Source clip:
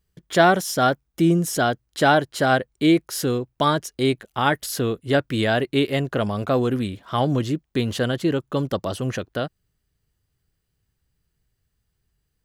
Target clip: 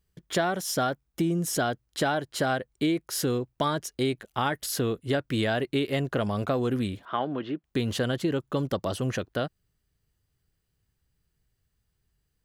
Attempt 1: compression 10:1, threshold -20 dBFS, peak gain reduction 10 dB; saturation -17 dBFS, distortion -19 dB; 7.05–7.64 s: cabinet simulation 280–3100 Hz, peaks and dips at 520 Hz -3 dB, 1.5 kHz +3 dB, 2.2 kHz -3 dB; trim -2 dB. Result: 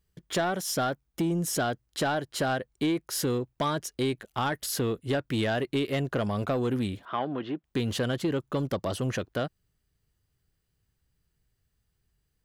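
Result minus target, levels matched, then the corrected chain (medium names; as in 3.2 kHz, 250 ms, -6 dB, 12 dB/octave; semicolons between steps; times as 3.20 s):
saturation: distortion +18 dB
compression 10:1, threshold -20 dBFS, peak gain reduction 10 dB; saturation -6 dBFS, distortion -38 dB; 7.05–7.64 s: cabinet simulation 280–3100 Hz, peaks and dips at 520 Hz -3 dB, 1.5 kHz +3 dB, 2.2 kHz -3 dB; trim -2 dB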